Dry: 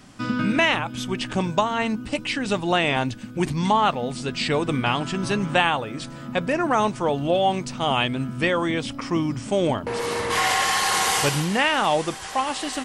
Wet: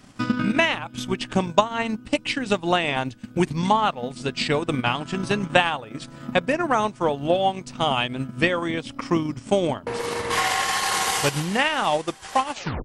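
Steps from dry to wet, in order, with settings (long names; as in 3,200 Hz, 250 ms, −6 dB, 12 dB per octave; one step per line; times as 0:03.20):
turntable brake at the end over 0.33 s
transient designer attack +7 dB, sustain −9 dB
level −2 dB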